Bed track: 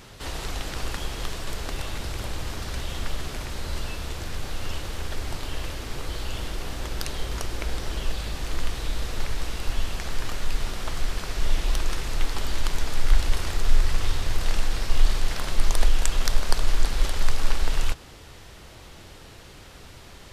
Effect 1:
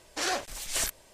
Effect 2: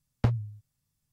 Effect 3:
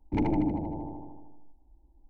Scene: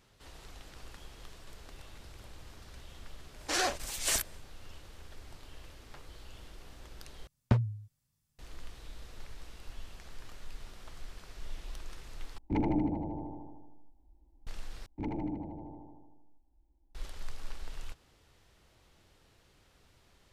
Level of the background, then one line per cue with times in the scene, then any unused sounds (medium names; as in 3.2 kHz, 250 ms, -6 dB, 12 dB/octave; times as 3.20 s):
bed track -19 dB
3.32 s: add 1 -0.5 dB, fades 0.10 s
5.70 s: add 2 -14 dB + high-pass 1 kHz
7.27 s: replace with 2 -1 dB + loudspeaker Doppler distortion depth 0.35 ms
12.38 s: replace with 3 -3 dB
14.86 s: replace with 3 -9.5 dB